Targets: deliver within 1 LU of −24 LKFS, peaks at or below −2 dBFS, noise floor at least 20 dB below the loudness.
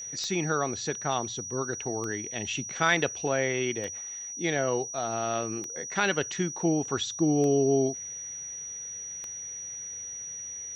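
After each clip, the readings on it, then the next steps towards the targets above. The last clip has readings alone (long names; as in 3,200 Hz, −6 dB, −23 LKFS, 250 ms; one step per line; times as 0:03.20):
number of clicks 6; interfering tone 5,800 Hz; level of the tone −36 dBFS; integrated loudness −29.5 LKFS; sample peak −9.5 dBFS; target loudness −24.0 LKFS
→ click removal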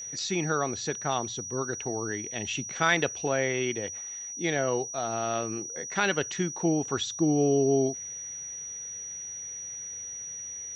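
number of clicks 0; interfering tone 5,800 Hz; level of the tone −36 dBFS
→ notch filter 5,800 Hz, Q 30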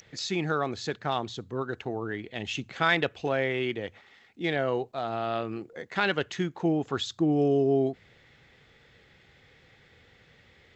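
interfering tone none found; integrated loudness −29.0 LKFS; sample peak −9.5 dBFS; target loudness −24.0 LKFS
→ level +5 dB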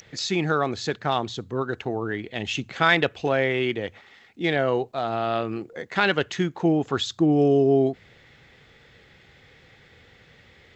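integrated loudness −24.0 LKFS; sample peak −4.5 dBFS; background noise floor −55 dBFS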